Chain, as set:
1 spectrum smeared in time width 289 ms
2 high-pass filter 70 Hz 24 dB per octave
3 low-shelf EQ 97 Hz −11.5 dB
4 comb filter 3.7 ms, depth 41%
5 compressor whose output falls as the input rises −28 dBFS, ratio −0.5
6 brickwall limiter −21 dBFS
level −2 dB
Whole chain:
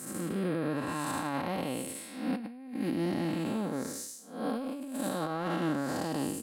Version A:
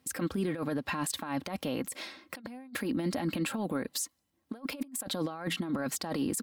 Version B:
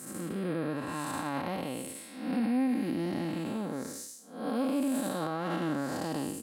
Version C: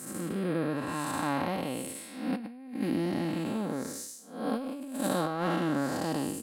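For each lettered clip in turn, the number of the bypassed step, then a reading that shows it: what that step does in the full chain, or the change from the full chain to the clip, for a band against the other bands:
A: 1, 4 kHz band +6.5 dB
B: 5, change in momentary loudness spread +3 LU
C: 6, change in crest factor +5.5 dB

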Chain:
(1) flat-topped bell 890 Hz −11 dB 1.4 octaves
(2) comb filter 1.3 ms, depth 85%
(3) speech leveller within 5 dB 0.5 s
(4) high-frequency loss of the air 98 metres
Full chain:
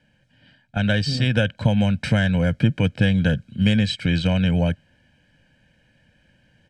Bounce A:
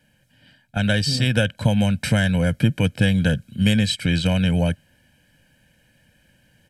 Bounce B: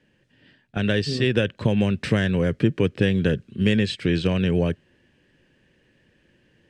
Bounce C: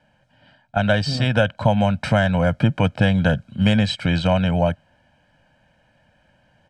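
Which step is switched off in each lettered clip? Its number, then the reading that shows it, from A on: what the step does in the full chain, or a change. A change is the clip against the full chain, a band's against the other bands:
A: 4, 4 kHz band +2.0 dB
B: 2, 500 Hz band +6.0 dB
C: 1, 1 kHz band +10.0 dB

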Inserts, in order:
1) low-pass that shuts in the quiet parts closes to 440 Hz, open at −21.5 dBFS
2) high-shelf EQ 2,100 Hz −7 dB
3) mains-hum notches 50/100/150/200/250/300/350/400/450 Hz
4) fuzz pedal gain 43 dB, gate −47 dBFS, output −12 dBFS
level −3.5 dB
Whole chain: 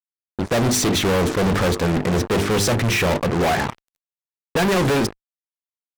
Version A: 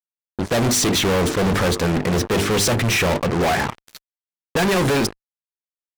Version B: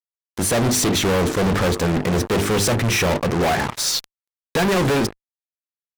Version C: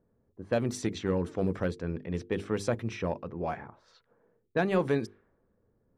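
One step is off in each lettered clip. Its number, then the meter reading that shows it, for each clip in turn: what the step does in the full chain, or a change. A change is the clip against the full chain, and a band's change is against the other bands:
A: 2, 8 kHz band +2.5 dB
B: 1, 8 kHz band +3.0 dB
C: 4, distortion level −1 dB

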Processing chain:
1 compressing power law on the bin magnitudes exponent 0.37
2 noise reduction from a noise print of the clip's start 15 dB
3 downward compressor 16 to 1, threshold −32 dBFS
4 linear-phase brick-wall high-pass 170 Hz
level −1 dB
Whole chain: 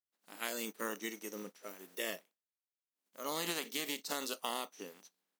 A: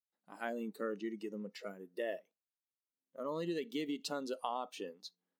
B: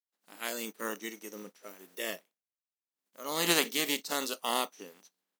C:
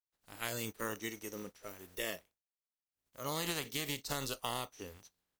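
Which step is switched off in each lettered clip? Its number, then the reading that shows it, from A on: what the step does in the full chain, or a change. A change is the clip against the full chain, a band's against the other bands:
1, 8 kHz band −15.0 dB
3, average gain reduction 3.0 dB
4, 125 Hz band +12.0 dB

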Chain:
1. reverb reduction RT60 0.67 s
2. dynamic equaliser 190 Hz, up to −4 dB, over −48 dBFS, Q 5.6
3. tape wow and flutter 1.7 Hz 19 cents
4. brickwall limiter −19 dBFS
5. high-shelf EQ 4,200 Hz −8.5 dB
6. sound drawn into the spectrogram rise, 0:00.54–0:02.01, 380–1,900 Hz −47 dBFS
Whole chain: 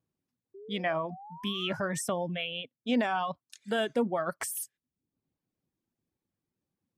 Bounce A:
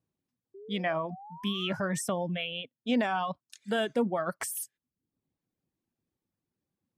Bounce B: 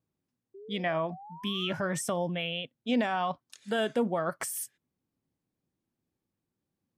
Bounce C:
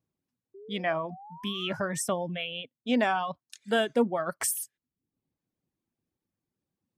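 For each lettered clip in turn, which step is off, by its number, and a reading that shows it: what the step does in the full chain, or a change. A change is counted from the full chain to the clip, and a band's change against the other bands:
2, 125 Hz band +2.5 dB
1, 125 Hz band +2.0 dB
4, change in crest factor +3.0 dB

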